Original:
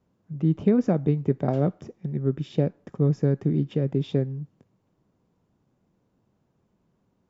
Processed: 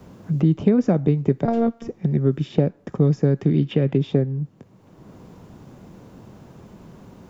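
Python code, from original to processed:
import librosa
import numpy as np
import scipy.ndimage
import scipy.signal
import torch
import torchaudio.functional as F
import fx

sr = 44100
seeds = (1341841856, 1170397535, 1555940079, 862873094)

y = fx.robotise(x, sr, hz=231.0, at=(1.45, 1.88))
y = fx.peak_eq(y, sr, hz=3000.0, db=fx.line((3.39, 4.0), (3.96, 14.5)), octaves=1.4, at=(3.39, 3.96), fade=0.02)
y = fx.band_squash(y, sr, depth_pct=70)
y = F.gain(torch.from_numpy(y), 4.5).numpy()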